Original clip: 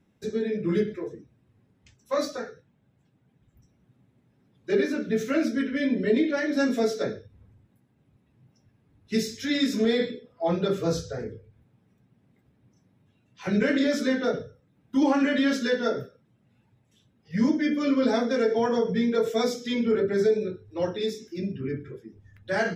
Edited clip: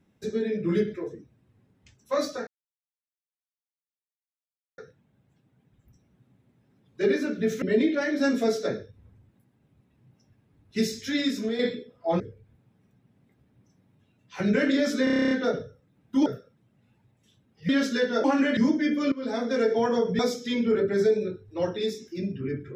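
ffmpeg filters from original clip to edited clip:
-filter_complex "[0:a]asplit=20[a][b][c][d][e][f][g][h][i][j][k][l][m][n][o][p][q][r][s][t];[a]atrim=end=2.47,asetpts=PTS-STARTPTS,afade=t=out:st=2.466:d=0.004:c=hsin,apad=pad_dur=2.31[u];[b]atrim=start=2.47:end=5.312,asetpts=PTS-STARTPTS,afade=t=in:d=0.004:c=hsin[v];[c]atrim=start=5.978:end=9.95,asetpts=PTS-STARTPTS,afade=t=out:st=3.482:d=0.49:silence=0.375837[w];[d]atrim=start=9.95:end=10.562,asetpts=PTS-STARTPTS,afade=t=in:d=0.004:c=hsin:silence=0.375837[x];[e]atrim=start=11.268:end=14.142[y];[f]atrim=start=14.108:end=14.142[z];[g]atrim=start=14.108:end=14.142[aa];[h]atrim=start=14.108:end=14.142[ab];[i]atrim=start=14.108:end=14.142[ac];[j]atrim=start=14.108:end=14.142[ad];[k]atrim=start=14.108:end=14.142[ae];[l]atrim=start=14.108:end=14.142[af];[m]atrim=start=14.108:end=14.142[ag];[n]atrim=start=14.108:end=15.062[ah];[o]atrim=start=15.938:end=17.372[ai];[p]atrim=start=15.388:end=15.942[aj];[q]atrim=start=15.058:end=15.392[ak];[r]atrim=start=17.368:end=17.92,asetpts=PTS-STARTPTS,afade=t=out:st=0.548:d=0.004:c=hsin:silence=0.11885[al];[s]atrim=start=17.92:end=18.992,asetpts=PTS-STARTPTS,afade=t=in:d=0.47:silence=0.11885[am];[t]atrim=start=19.388[an];[u][v]concat=n=2:v=0:a=1[ao];[w][x]concat=n=2:v=0:a=1[ap];[ao][ap]acrossfade=d=0.004:c1=hsin:c2=hsin[aq];[aq][y]acrossfade=d=0.004:c1=hsin:c2=hsin[ar];[ar][z]acrossfade=d=0.004:c1=hsin:c2=hsin[as];[as][aa]acrossfade=d=0.004:c1=hsin:c2=hsin[at];[at][ab]acrossfade=d=0.004:c1=hsin:c2=hsin[au];[au][ac]acrossfade=d=0.004:c1=hsin:c2=hsin[av];[av][ad]acrossfade=d=0.004:c1=hsin:c2=hsin[aw];[aw][ae]acrossfade=d=0.004:c1=hsin:c2=hsin[ax];[ax][af]acrossfade=d=0.004:c1=hsin:c2=hsin[ay];[ay][ag]acrossfade=d=0.004:c1=hsin:c2=hsin[az];[az][ah]acrossfade=d=0.004:c1=hsin:c2=hsin[ba];[ba][ai]acrossfade=d=0.004:c1=hsin:c2=hsin[bb];[bb][aj]acrossfade=d=0.004:c1=hsin:c2=hsin[bc];[bc][ak]acrossfade=d=0.004:c1=hsin:c2=hsin[bd];[al][am]concat=n=2:v=0:a=1[be];[bd][be]acrossfade=d=0.004:c1=hsin:c2=hsin[bf];[bf][an]acrossfade=d=0.004:c1=hsin:c2=hsin"

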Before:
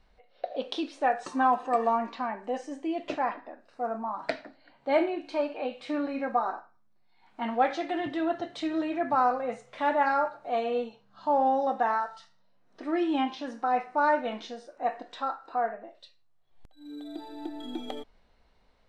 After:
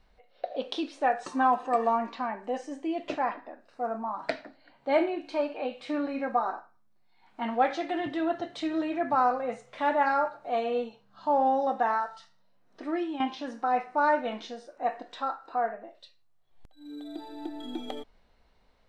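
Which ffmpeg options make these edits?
-filter_complex "[0:a]asplit=2[a][b];[a]atrim=end=13.2,asetpts=PTS-STARTPTS,afade=t=out:st=12.84:d=0.36:silence=0.281838[c];[b]atrim=start=13.2,asetpts=PTS-STARTPTS,afade=t=in:d=0.004:c=hsin:silence=0.281838[d];[c][d]concat=n=2:v=0:a=1"

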